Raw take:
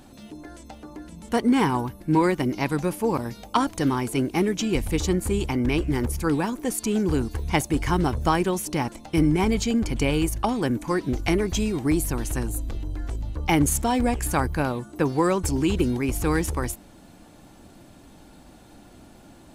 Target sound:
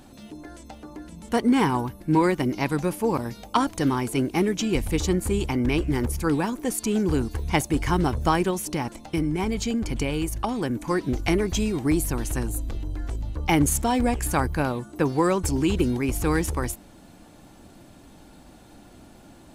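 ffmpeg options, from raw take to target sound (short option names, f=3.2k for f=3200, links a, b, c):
-filter_complex "[0:a]asettb=1/sr,asplit=3[a][b][c];[a]atrim=end=8.504[d];[b]atrim=start=8.5:end=10.86,asetpts=PTS-STARTPTS,afade=t=in:d=0.004:c=qsin,afade=t=out:st=2.356:d=0.004:c=qsin,acompressor=threshold=-23dB:ratio=3[e];[c]atrim=start=10.856[f];[d][e]acrossfade=d=0.004:c1=hsin:c2=qsin[g];[g][f]acrossfade=d=0.004:c1=qsin:c2=hsin"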